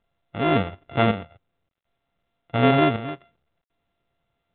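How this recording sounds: a buzz of ramps at a fixed pitch in blocks of 64 samples; chopped level 0.54 Hz, depth 60%, duty 60%; µ-law

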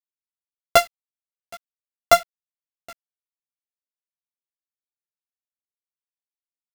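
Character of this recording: a buzz of ramps at a fixed pitch in blocks of 64 samples; tremolo saw up 0.7 Hz, depth 45%; a quantiser's noise floor 8-bit, dither none; a shimmering, thickened sound

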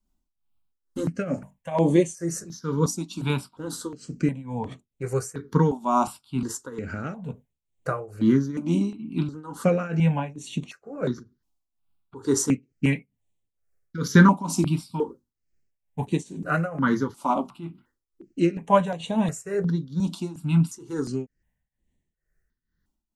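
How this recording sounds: tremolo triangle 2.2 Hz, depth 90%; notches that jump at a steady rate 2.8 Hz 470–5000 Hz

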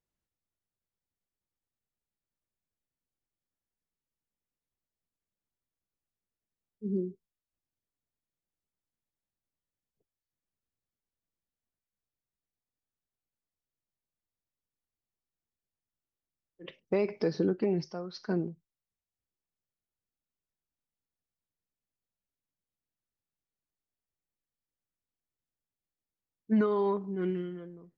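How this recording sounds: noise floor -94 dBFS; spectral tilt -6.0 dB/oct

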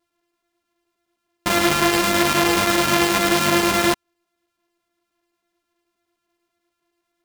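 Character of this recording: a buzz of ramps at a fixed pitch in blocks of 128 samples; chopped level 9.4 Hz, duty 90%; a shimmering, thickened sound

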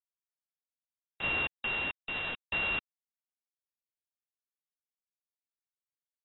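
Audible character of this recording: a buzz of ramps at a fixed pitch in blocks of 16 samples; tremolo saw down 0.81 Hz, depth 55%; a quantiser's noise floor 6-bit, dither none; AAC

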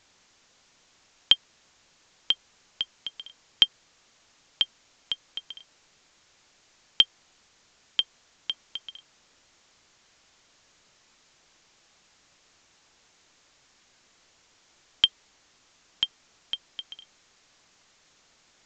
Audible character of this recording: a quantiser's noise floor 10-bit, dither triangular; µ-law

